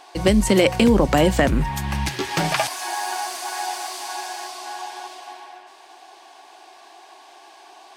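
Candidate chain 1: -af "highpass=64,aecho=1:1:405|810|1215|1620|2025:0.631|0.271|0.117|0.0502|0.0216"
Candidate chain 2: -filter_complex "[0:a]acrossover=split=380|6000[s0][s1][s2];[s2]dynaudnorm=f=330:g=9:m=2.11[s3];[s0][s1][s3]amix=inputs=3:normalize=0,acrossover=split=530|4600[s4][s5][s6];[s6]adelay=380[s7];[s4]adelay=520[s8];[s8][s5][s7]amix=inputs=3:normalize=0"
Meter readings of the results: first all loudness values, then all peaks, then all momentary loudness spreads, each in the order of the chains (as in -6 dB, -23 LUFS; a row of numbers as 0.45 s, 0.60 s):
-20.0 LUFS, -22.0 LUFS; -2.0 dBFS, -4.5 dBFS; 18 LU, 16 LU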